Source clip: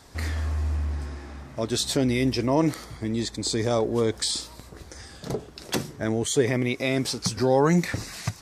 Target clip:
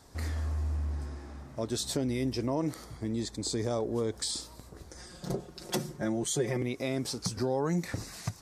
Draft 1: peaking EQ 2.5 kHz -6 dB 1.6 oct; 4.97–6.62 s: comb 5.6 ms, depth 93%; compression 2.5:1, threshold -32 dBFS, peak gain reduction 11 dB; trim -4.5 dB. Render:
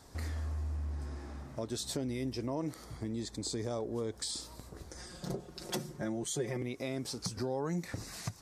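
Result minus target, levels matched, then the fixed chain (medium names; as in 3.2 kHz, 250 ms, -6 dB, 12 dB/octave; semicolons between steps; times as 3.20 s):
compression: peak gain reduction +5.5 dB
peaking EQ 2.5 kHz -6 dB 1.6 oct; 4.97–6.62 s: comb 5.6 ms, depth 93%; compression 2.5:1, threshold -23 dBFS, peak gain reduction 6 dB; trim -4.5 dB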